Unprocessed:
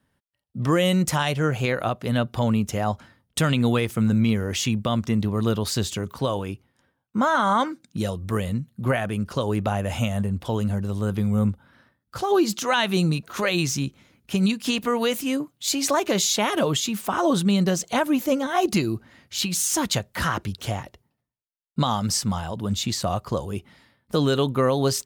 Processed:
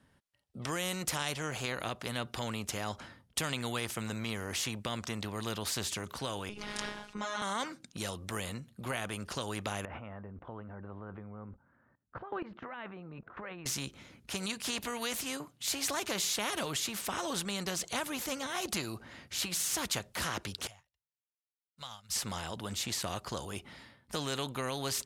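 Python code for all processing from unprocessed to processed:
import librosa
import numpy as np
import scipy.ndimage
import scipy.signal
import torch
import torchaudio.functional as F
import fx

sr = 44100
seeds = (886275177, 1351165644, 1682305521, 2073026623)

y = fx.chain(x, sr, fx.lowpass(hz=6100.0, slope=12),
    fx.robotise(hz=208.0),
    fx.pre_swell(db_per_s=24.0), at=(6.49, 7.42))
y = fx.chain(y, sr, fx.lowpass(hz=1700.0, slope=24),
    fx.level_steps(step_db=18), at=(9.85, 13.66))
y = fx.chain(y, sr, fx.law_mismatch(coded='mu'),
    fx.tone_stack(knobs='10-0-10'),
    fx.upward_expand(threshold_db=-48.0, expansion=2.5), at=(20.67, 22.16))
y = scipy.signal.sosfilt(scipy.signal.butter(2, 11000.0, 'lowpass', fs=sr, output='sos'), y)
y = fx.spectral_comp(y, sr, ratio=2.0)
y = y * librosa.db_to_amplitude(-3.5)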